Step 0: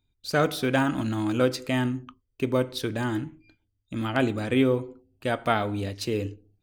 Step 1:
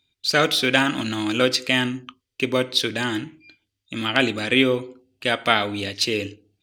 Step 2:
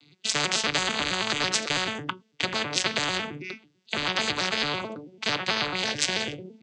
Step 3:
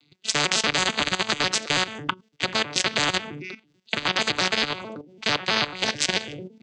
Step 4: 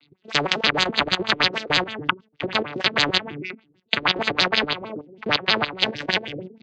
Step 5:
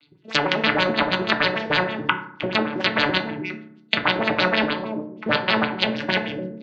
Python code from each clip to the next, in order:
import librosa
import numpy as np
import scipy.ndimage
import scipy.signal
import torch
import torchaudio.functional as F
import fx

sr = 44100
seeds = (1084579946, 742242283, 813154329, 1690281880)

y1 = fx.weighting(x, sr, curve='D')
y1 = y1 * 10.0 ** (3.0 / 20.0)
y2 = fx.vocoder_arp(y1, sr, chord='major triad', root=50, every_ms=110)
y2 = fx.spectral_comp(y2, sr, ratio=10.0)
y3 = fx.level_steps(y2, sr, step_db=14)
y3 = y3 * 10.0 ** (6.0 / 20.0)
y4 = fx.filter_lfo_lowpass(y3, sr, shape='sine', hz=6.4, low_hz=350.0, high_hz=4600.0, q=2.4)
y4 = y4 * 10.0 ** (1.0 / 20.0)
y5 = fx.rev_fdn(y4, sr, rt60_s=0.64, lf_ratio=1.45, hf_ratio=0.45, size_ms=10.0, drr_db=3.0)
y5 = fx.env_lowpass_down(y5, sr, base_hz=2900.0, full_db=-17.0)